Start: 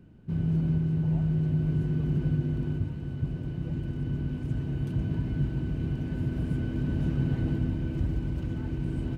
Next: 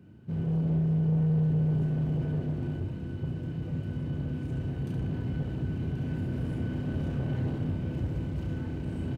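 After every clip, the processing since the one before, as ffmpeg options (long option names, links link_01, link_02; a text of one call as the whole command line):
ffmpeg -i in.wav -filter_complex "[0:a]highpass=frequency=64:width=0.5412,highpass=frequency=64:width=1.3066,asoftclip=type=tanh:threshold=-27dB,asplit=2[link_01][link_02];[link_02]aecho=0:1:32|70:0.501|0.473[link_03];[link_01][link_03]amix=inputs=2:normalize=0" out.wav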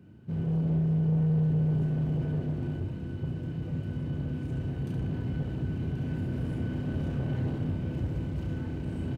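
ffmpeg -i in.wav -af anull out.wav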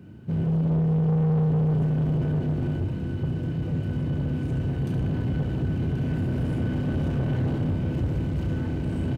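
ffmpeg -i in.wav -af "asoftclip=type=tanh:threshold=-26.5dB,volume=7.5dB" out.wav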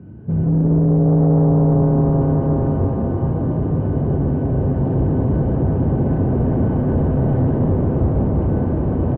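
ffmpeg -i in.wav -filter_complex "[0:a]lowpass=1100,lowshelf=frequency=72:gain=7.5,asplit=2[link_01][link_02];[link_02]asplit=8[link_03][link_04][link_05][link_06][link_07][link_08][link_09][link_10];[link_03]adelay=175,afreqshift=130,volume=-8dB[link_11];[link_04]adelay=350,afreqshift=260,volume=-12.2dB[link_12];[link_05]adelay=525,afreqshift=390,volume=-16.3dB[link_13];[link_06]adelay=700,afreqshift=520,volume=-20.5dB[link_14];[link_07]adelay=875,afreqshift=650,volume=-24.6dB[link_15];[link_08]adelay=1050,afreqshift=780,volume=-28.8dB[link_16];[link_09]adelay=1225,afreqshift=910,volume=-32.9dB[link_17];[link_10]adelay=1400,afreqshift=1040,volume=-37.1dB[link_18];[link_11][link_12][link_13][link_14][link_15][link_16][link_17][link_18]amix=inputs=8:normalize=0[link_19];[link_01][link_19]amix=inputs=2:normalize=0,volume=5.5dB" out.wav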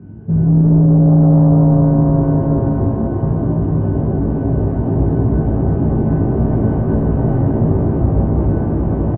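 ffmpeg -i in.wav -filter_complex "[0:a]aemphasis=mode=reproduction:type=75fm,bandreject=frequency=500:width=12,asplit=2[link_01][link_02];[link_02]adelay=18,volume=-2dB[link_03];[link_01][link_03]amix=inputs=2:normalize=0" out.wav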